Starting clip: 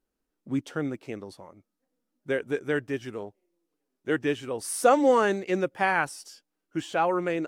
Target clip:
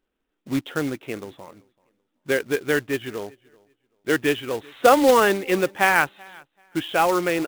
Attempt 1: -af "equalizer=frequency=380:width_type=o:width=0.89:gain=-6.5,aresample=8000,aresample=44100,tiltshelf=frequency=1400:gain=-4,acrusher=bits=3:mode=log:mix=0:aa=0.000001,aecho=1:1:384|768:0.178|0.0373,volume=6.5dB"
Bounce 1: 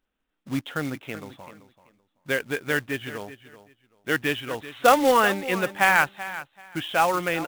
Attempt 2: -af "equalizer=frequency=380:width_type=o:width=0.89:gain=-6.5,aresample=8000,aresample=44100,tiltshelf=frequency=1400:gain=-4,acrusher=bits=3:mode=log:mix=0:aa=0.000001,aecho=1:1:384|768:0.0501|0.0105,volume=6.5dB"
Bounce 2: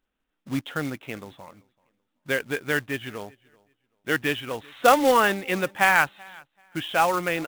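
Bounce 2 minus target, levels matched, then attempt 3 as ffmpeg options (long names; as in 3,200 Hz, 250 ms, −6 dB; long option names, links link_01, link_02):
500 Hz band −2.5 dB
-af "equalizer=frequency=380:width_type=o:width=0.89:gain=2,aresample=8000,aresample=44100,tiltshelf=frequency=1400:gain=-4,acrusher=bits=3:mode=log:mix=0:aa=0.000001,aecho=1:1:384|768:0.0501|0.0105,volume=6.5dB"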